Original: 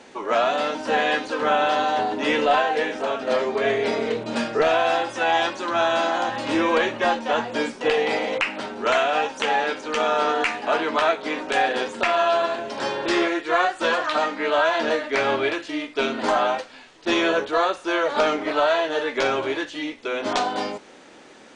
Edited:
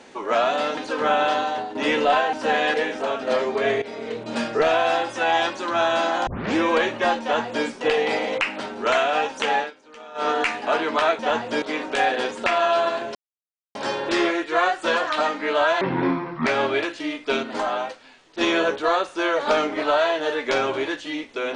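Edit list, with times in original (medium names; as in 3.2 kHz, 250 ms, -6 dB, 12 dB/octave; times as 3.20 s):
0.77–1.18 s: move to 2.74 s
1.70–2.16 s: fade out linear, to -10 dB
3.82–4.46 s: fade in, from -16 dB
6.27 s: tape start 0.29 s
7.22–7.65 s: copy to 11.19 s
9.58–10.27 s: dip -19.5 dB, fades 0.13 s
12.72 s: insert silence 0.60 s
14.78–15.15 s: speed 57%
16.12–17.10 s: gain -4.5 dB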